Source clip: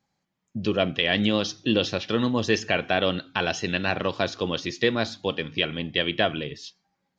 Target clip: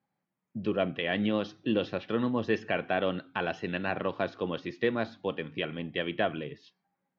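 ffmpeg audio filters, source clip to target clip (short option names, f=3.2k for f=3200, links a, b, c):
-af "highpass=120,lowpass=2.1k,volume=-4.5dB"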